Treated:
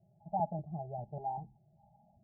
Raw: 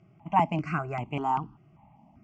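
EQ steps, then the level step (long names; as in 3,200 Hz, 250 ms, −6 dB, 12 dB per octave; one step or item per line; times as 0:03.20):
Chebyshev low-pass with heavy ripple 850 Hz, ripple 6 dB
phaser with its sweep stopped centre 670 Hz, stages 4
−2.5 dB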